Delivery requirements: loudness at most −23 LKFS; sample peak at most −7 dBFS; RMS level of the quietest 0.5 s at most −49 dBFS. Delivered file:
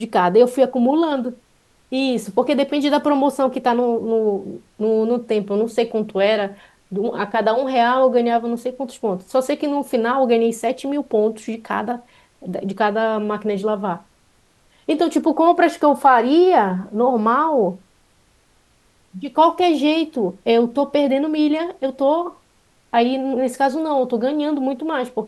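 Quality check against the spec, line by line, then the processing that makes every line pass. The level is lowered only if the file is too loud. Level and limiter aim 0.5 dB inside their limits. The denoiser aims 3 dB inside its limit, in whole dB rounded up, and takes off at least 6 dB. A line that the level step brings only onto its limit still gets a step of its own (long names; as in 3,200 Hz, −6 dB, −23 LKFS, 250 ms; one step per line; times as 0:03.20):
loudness −19.0 LKFS: out of spec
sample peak −2.0 dBFS: out of spec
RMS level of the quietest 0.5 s −58 dBFS: in spec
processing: level −4.5 dB
brickwall limiter −7.5 dBFS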